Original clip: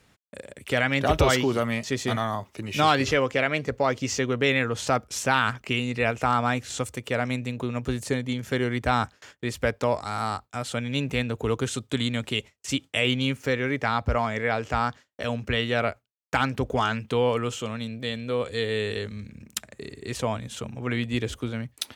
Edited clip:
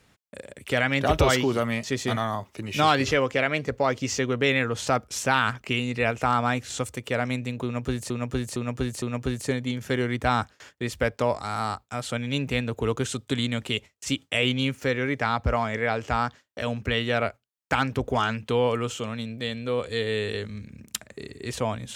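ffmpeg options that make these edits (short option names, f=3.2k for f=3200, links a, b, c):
-filter_complex "[0:a]asplit=4[a][b][c][d];[a]atrim=end=8.102[e];[b]atrim=start=7.638:end=8.102[f];[c]atrim=start=7.638:end=8.102[g];[d]atrim=start=7.638[h];[e][f]acrossfade=d=0.004:c1=hsin:c2=hsin[i];[i][g]acrossfade=d=0.004:c1=hsin:c2=hsin[j];[j][h]acrossfade=d=0.004:c1=hsin:c2=hsin"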